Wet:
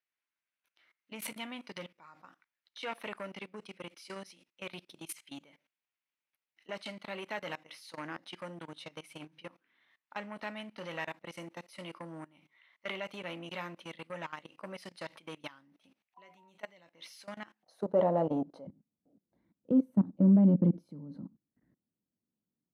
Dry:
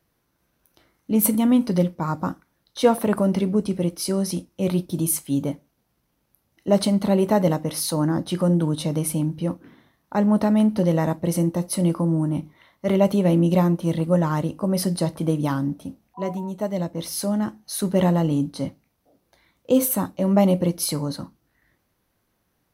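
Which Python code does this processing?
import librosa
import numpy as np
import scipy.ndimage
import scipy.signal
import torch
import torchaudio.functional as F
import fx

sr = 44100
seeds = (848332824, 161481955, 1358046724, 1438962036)

y = fx.level_steps(x, sr, step_db=22)
y = 10.0 ** (-17.5 / 20.0) * np.tanh(y / 10.0 ** (-17.5 / 20.0))
y = fx.bandpass_q(y, sr, hz=fx.steps((0.0, 2400.0), (17.63, 610.0), (18.67, 220.0)), q=2.1)
y = y * librosa.db_to_amplitude(5.0)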